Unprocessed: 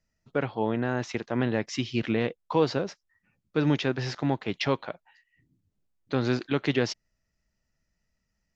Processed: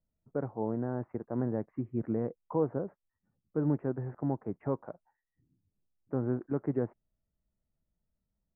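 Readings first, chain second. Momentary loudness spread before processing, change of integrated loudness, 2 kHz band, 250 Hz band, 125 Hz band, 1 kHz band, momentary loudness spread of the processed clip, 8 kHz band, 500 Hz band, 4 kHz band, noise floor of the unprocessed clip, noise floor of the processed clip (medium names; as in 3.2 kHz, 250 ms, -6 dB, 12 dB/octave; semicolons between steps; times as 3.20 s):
7 LU, -6.0 dB, -21.0 dB, -5.0 dB, -4.5 dB, -9.5 dB, 7 LU, no reading, -5.5 dB, under -40 dB, -79 dBFS, under -85 dBFS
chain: Gaussian low-pass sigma 8 samples; trim -4.5 dB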